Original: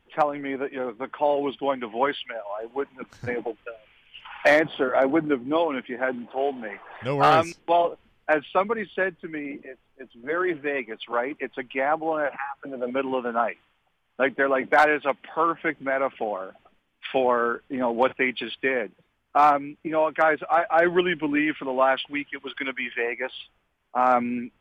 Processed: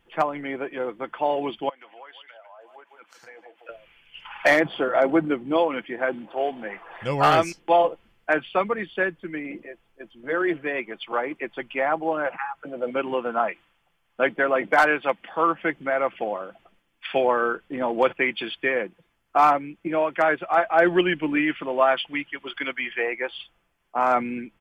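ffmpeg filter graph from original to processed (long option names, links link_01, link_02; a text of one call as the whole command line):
ffmpeg -i in.wav -filter_complex "[0:a]asettb=1/sr,asplit=3[link_01][link_02][link_03];[link_01]atrim=end=1.694[link_04];[link_02]atrim=start=1.69:end=3.69,asetpts=PTS-STARTPTS,afade=type=in:duration=0.004:curve=qsin,afade=type=out:start_time=1.996:duration=0.004:curve=qsin,highpass=660,aecho=1:1:151:0.15,atrim=end_sample=88200,acompressor=threshold=-48dB:ratio=3:attack=3.2:release=140:knee=1:detection=peak[link_05];[link_03]atrim=start=3.686[link_06];[link_04][link_05]acrossfade=duration=0.004:curve1=hsin:curve2=qsin[link_07];[link_07][link_06]acrossfade=duration=0.004:curve1=qsin:curve2=hsin,highshelf=frequency=5100:gain=4.5,bandreject=frequency=3800:width=13,aecho=1:1:5.9:0.31" out.wav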